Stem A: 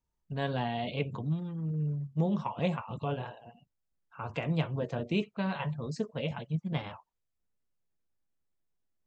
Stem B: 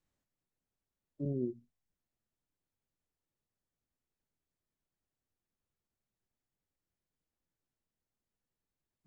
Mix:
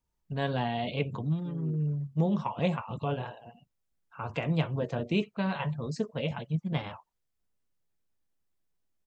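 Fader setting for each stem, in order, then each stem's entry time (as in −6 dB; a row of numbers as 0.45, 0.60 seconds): +2.0, −8.5 decibels; 0.00, 0.25 seconds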